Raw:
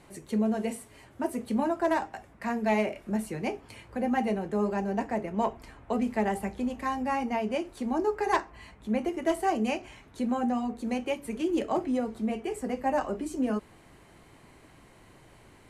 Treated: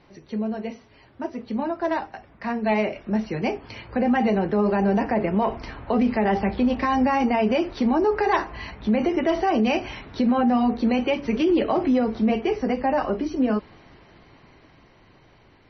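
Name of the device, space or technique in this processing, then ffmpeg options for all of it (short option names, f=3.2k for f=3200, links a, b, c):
low-bitrate web radio: -filter_complex "[0:a]asettb=1/sr,asplit=3[a][b][c];[a]atrim=end=11.594[d];[b]atrim=start=11.59:end=12.33,asetpts=PTS-STARTPTS,afade=t=in:d=0.004:c=qsin,afade=t=out:st=0.736:d=0.004:c=qsin,lowpass=9.8k[e];[c]atrim=start=12.326[f];[d][e]acrossfade=d=0.004:c1=hsin:c2=qsin[g];[g][f]acrossfade=d=0.004:c1=qsin:c2=hsin,dynaudnorm=f=670:g=11:m=14dB,alimiter=limit=-13dB:level=0:latency=1:release=44" -ar 24000 -c:a libmp3lame -b:a 24k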